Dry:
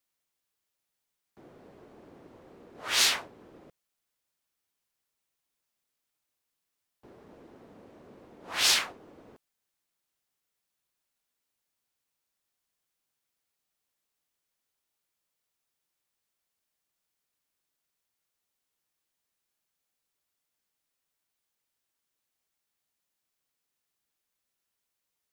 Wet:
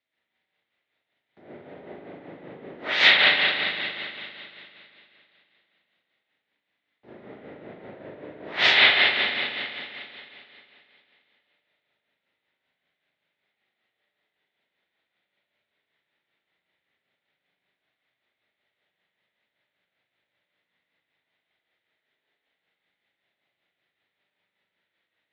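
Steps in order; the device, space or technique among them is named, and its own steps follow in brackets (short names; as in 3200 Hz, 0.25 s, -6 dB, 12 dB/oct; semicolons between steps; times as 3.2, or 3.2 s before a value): combo amplifier with spring reverb and tremolo (spring tank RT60 2.8 s, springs 39/56 ms, chirp 35 ms, DRR -10 dB; tremolo 5.2 Hz, depth 49%; speaker cabinet 110–3800 Hz, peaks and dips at 610 Hz +4 dB, 1100 Hz -6 dB, 2000 Hz +9 dB, 3700 Hz +6 dB); gain +2 dB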